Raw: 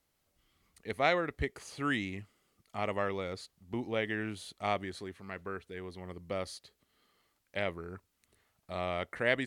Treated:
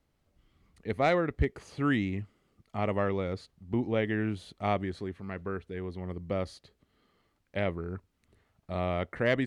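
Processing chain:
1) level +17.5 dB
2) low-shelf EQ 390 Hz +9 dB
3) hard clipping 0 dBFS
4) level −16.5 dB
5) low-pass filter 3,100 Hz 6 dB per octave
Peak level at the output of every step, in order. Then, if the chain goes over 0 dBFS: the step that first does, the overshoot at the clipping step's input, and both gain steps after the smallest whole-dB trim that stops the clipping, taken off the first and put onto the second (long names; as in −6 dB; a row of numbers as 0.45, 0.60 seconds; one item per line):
+4.0, +4.5, 0.0, −16.5, −16.5 dBFS
step 1, 4.5 dB
step 1 +12.5 dB, step 4 −11.5 dB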